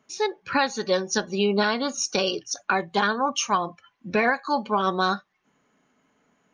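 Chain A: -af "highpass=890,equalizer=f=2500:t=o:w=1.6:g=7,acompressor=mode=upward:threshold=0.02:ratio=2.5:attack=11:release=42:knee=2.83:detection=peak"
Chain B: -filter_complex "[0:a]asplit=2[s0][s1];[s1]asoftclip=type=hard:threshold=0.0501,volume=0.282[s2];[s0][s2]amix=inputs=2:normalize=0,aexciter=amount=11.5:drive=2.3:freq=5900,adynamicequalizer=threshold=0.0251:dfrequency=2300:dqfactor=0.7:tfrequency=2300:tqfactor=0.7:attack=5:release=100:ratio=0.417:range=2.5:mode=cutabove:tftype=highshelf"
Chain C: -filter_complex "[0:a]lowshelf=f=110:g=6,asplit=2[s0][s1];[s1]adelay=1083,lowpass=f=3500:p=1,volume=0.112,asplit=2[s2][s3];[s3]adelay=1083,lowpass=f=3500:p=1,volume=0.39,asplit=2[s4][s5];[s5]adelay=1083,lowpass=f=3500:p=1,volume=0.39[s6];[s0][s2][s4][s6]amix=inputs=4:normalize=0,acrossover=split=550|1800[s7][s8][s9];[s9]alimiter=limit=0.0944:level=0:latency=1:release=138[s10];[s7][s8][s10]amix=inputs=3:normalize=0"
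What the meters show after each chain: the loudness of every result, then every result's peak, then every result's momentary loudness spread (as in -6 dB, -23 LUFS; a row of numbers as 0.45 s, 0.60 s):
-24.0 LUFS, -21.0 LUFS, -25.0 LUFS; -7.0 dBFS, -2.0 dBFS, -8.0 dBFS; 6 LU, 7 LU, 20 LU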